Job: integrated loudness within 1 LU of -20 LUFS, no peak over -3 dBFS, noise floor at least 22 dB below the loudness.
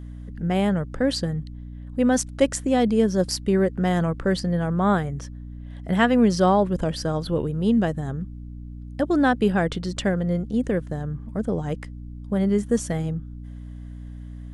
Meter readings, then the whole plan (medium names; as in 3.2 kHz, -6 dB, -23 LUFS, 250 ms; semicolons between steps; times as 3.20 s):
hum 60 Hz; highest harmonic 300 Hz; hum level -35 dBFS; loudness -23.5 LUFS; peak level -5.5 dBFS; loudness target -20.0 LUFS
-> de-hum 60 Hz, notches 5; trim +3.5 dB; peak limiter -3 dBFS